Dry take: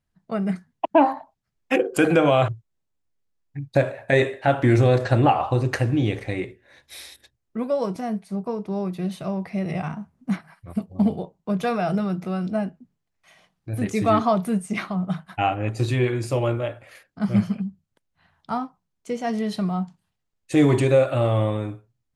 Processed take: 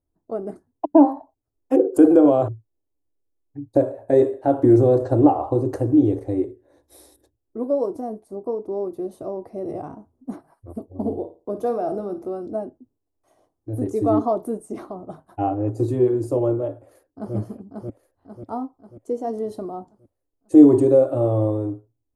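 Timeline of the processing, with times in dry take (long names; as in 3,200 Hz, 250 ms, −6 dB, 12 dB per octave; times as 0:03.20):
0:10.99–0:12.26: flutter between parallel walls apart 9.2 metres, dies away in 0.31 s
0:16.71–0:17.35: delay throw 540 ms, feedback 50%, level −3 dB
whole clip: drawn EQ curve 110 Hz 0 dB, 180 Hz −19 dB, 290 Hz +9 dB, 1,000 Hz −5 dB, 2,300 Hz −26 dB, 10,000 Hz −5 dB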